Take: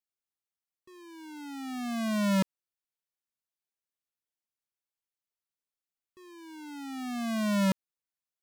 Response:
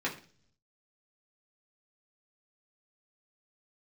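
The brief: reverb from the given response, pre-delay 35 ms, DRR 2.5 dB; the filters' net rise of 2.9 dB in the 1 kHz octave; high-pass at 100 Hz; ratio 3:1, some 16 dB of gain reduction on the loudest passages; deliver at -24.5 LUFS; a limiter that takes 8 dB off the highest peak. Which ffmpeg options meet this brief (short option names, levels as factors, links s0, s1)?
-filter_complex "[0:a]highpass=100,equalizer=f=1000:t=o:g=3.5,acompressor=threshold=0.00631:ratio=3,alimiter=level_in=7.08:limit=0.0631:level=0:latency=1,volume=0.141,asplit=2[s0][s1];[1:a]atrim=start_sample=2205,adelay=35[s2];[s1][s2]afir=irnorm=-1:irlink=0,volume=0.335[s3];[s0][s3]amix=inputs=2:normalize=0,volume=12.6"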